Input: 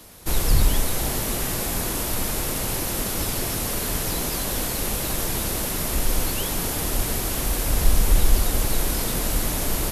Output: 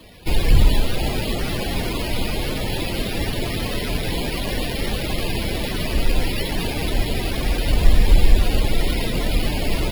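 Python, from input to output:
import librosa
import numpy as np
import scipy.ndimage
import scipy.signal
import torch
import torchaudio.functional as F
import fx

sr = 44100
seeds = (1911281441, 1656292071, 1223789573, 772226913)

y = fx.spec_topn(x, sr, count=64)
y = np.repeat(y[::6], 6)[:len(y)]
y = y * 10.0 ** (4.5 / 20.0)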